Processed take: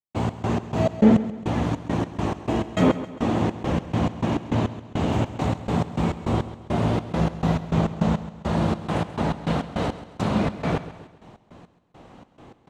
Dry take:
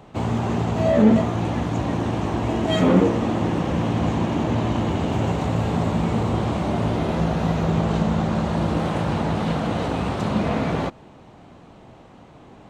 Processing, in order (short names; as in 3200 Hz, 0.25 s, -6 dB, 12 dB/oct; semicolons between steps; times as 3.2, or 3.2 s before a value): step gate ".x.x.x.x..xx" 103 bpm -60 dB; on a send: feedback echo 0.134 s, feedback 44%, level -14 dB